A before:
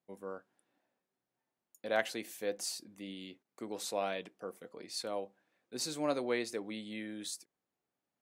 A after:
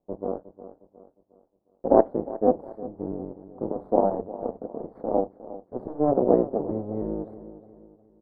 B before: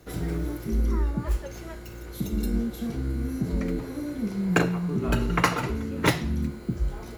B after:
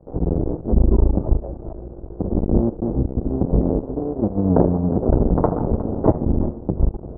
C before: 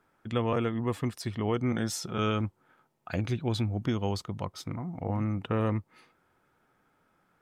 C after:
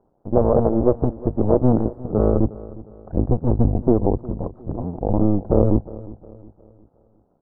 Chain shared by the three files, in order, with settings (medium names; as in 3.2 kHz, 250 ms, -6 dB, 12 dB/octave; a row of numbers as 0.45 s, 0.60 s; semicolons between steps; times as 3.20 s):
cycle switcher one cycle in 2, muted; inverse Chebyshev low-pass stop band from 2.5 kHz, stop band 60 dB; peaking EQ 110 Hz -3 dB 2.1 oct; in parallel at +1 dB: peak limiter -23 dBFS; on the sum: feedback delay 359 ms, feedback 41%, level -14 dB; upward expansion 1.5:1, over -36 dBFS; peak normalisation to -2 dBFS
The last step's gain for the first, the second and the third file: +15.5 dB, +9.5 dB, +12.5 dB